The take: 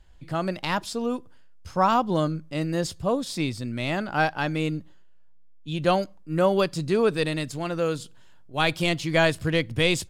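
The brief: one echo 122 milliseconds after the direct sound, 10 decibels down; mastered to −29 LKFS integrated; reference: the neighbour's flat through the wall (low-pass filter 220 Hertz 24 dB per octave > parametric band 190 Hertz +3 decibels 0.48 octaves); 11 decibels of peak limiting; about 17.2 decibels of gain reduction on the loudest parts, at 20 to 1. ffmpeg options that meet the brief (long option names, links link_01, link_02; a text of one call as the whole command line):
ffmpeg -i in.wav -af "acompressor=threshold=-33dB:ratio=20,alimiter=level_in=7dB:limit=-24dB:level=0:latency=1,volume=-7dB,lowpass=frequency=220:width=0.5412,lowpass=frequency=220:width=1.3066,equalizer=frequency=190:width_type=o:width=0.48:gain=3,aecho=1:1:122:0.316,volume=16dB" out.wav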